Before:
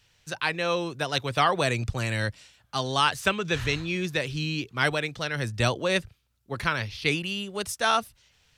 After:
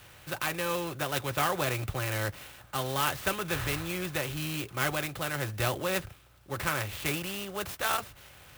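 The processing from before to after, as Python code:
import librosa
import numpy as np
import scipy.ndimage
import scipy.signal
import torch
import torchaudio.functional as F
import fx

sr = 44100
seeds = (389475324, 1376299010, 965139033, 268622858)

y = fx.bin_compress(x, sr, power=0.6)
y = fx.notch_comb(y, sr, f0_hz=230.0)
y = fx.clock_jitter(y, sr, seeds[0], jitter_ms=0.042)
y = F.gain(torch.from_numpy(y), -7.0).numpy()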